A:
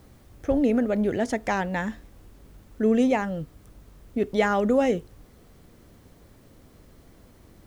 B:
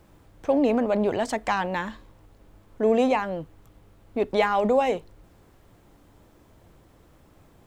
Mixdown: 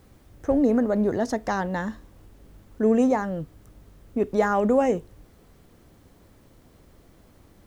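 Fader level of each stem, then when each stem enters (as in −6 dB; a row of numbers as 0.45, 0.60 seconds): −2.5, −6.0 decibels; 0.00, 0.00 seconds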